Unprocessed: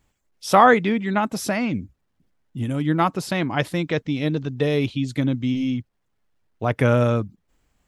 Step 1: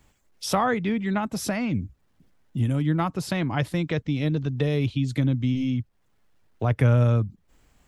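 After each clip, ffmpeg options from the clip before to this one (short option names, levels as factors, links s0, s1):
-filter_complex "[0:a]acrossover=split=130[s0][s1];[s1]acompressor=threshold=0.00891:ratio=2[s2];[s0][s2]amix=inputs=2:normalize=0,volume=2.11"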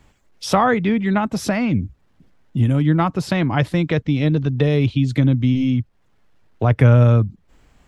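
-af "highshelf=f=7400:g=-11.5,volume=2.24"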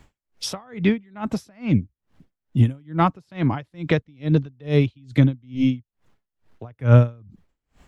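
-af "aeval=exprs='val(0)*pow(10,-35*(0.5-0.5*cos(2*PI*2.3*n/s))/20)':c=same,volume=1.26"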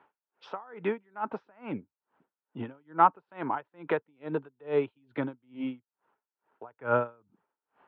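-af "highpass=410,equalizer=f=420:t=q:w=4:g=5,equalizer=f=910:t=q:w=4:g=10,equalizer=f=1400:t=q:w=4:g=7,equalizer=f=2100:t=q:w=4:g=-6,lowpass=f=2500:w=0.5412,lowpass=f=2500:w=1.3066,volume=0.501"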